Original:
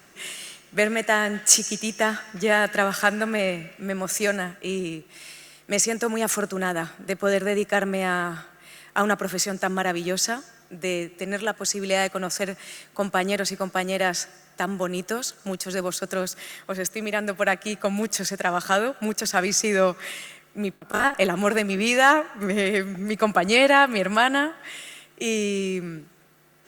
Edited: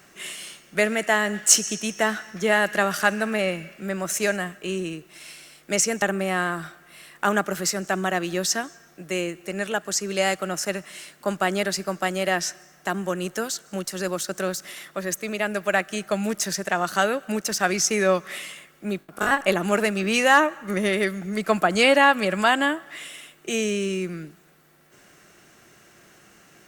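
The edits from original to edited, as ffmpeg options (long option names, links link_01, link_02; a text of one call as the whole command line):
ffmpeg -i in.wav -filter_complex "[0:a]asplit=2[link_01][link_02];[link_01]atrim=end=6.022[link_03];[link_02]atrim=start=7.748[link_04];[link_03][link_04]acrossfade=duration=0.004:curve1=hsin:curve2=hsin" out.wav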